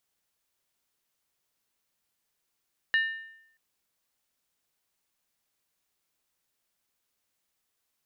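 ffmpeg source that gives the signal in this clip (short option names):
-f lavfi -i "aevalsrc='0.106*pow(10,-3*t/0.77)*sin(2*PI*1800*t)+0.0335*pow(10,-3*t/0.61)*sin(2*PI*2869.2*t)+0.0106*pow(10,-3*t/0.527)*sin(2*PI*3844.8*t)+0.00335*pow(10,-3*t/0.508)*sin(2*PI*4132.8*t)+0.00106*pow(10,-3*t/0.473)*sin(2*PI*4775.4*t)':d=0.63:s=44100"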